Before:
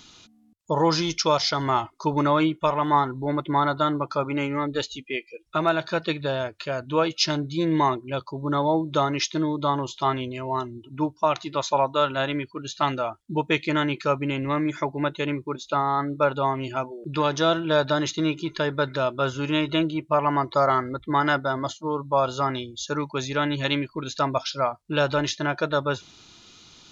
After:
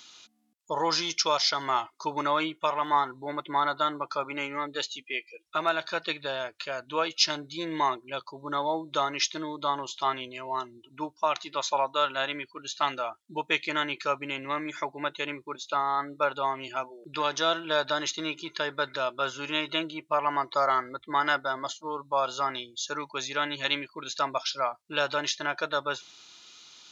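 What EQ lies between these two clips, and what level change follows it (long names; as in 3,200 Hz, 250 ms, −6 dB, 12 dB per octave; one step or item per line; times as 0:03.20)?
high-pass filter 1,100 Hz 6 dB per octave
0.0 dB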